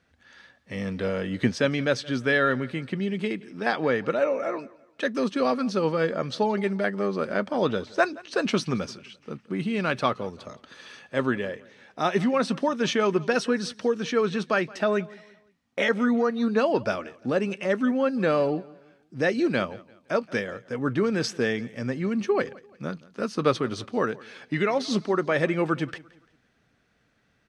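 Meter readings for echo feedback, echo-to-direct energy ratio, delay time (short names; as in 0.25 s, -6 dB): 37%, -21.5 dB, 0.172 s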